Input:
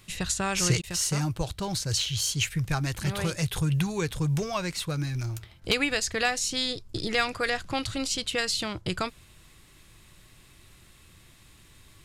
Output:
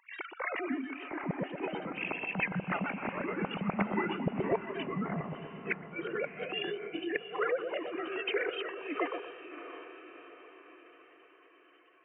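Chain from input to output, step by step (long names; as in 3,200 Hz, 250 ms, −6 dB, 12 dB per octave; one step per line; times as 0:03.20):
three sine waves on the formant tracks
low-shelf EQ 300 Hz −8 dB
bucket-brigade delay 123 ms, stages 1,024, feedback 32%, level −4.5 dB
gate with flip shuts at −14 dBFS, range −37 dB
on a send: feedback delay with all-pass diffusion 668 ms, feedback 50%, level −12 dB
on the sum: formants moved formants −3 semitones
level −3.5 dB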